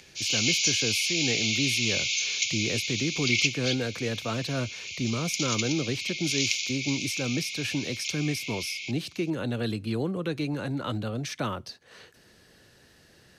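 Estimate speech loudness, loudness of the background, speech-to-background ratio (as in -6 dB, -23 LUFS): -31.5 LUFS, -27.5 LUFS, -4.0 dB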